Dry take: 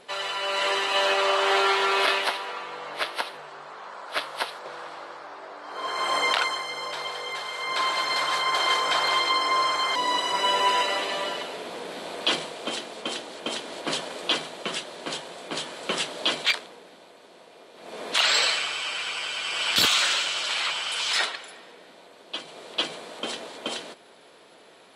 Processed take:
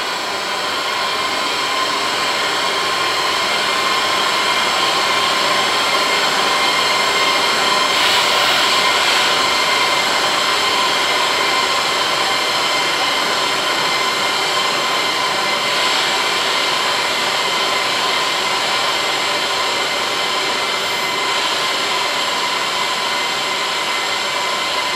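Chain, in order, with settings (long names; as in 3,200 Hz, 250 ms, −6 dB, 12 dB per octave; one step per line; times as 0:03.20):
compressor on every frequency bin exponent 0.2
source passing by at 0:06.38, 8 m/s, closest 8.8 metres
extreme stretch with random phases 13×, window 0.05 s, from 0:05.59
on a send: feedback delay with all-pass diffusion 739 ms, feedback 78%, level −9 dB
on the sum: level −1.5 dB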